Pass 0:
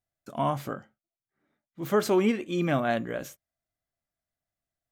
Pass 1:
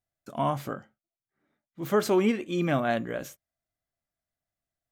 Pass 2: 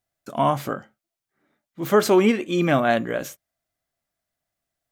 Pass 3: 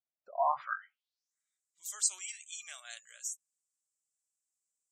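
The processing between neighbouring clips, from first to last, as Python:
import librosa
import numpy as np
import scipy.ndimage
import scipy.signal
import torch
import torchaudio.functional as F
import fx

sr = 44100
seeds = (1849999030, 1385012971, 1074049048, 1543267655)

y1 = x
y2 = fx.low_shelf(y1, sr, hz=150.0, db=-6.0)
y2 = y2 * librosa.db_to_amplitude(7.5)
y3 = fx.tone_stack(y2, sr, knobs='10-0-10')
y3 = fx.filter_sweep_bandpass(y3, sr, from_hz=320.0, to_hz=7600.0, start_s=0.09, end_s=1.37, q=4.4)
y3 = fx.spec_gate(y3, sr, threshold_db=-20, keep='strong')
y3 = y3 * librosa.db_to_amplitude(8.0)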